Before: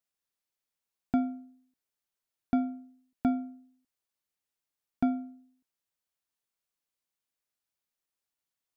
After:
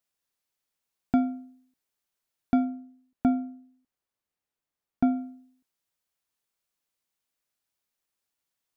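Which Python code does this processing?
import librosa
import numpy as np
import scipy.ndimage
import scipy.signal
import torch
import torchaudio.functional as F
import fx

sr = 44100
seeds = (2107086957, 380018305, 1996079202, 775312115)

y = fx.high_shelf(x, sr, hz=2300.0, db=-8.5, at=(2.64, 5.15), fade=0.02)
y = y * librosa.db_to_amplitude(4.0)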